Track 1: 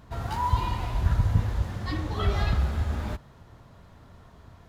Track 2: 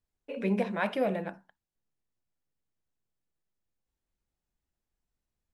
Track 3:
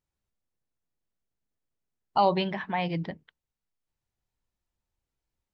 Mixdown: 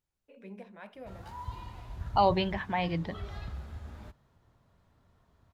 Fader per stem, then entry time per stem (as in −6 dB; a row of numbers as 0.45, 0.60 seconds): −15.5, −18.0, −1.5 decibels; 0.95, 0.00, 0.00 seconds